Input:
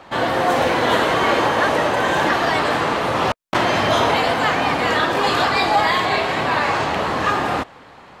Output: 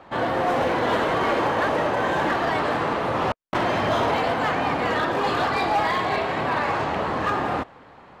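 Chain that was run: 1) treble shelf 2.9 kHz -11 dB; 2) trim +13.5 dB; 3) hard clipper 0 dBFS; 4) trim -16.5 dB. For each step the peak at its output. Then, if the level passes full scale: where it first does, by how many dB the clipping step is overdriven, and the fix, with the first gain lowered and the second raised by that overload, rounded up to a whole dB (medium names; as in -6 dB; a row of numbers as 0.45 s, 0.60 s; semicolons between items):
-6.5 dBFS, +7.0 dBFS, 0.0 dBFS, -16.5 dBFS; step 2, 7.0 dB; step 2 +6.5 dB, step 4 -9.5 dB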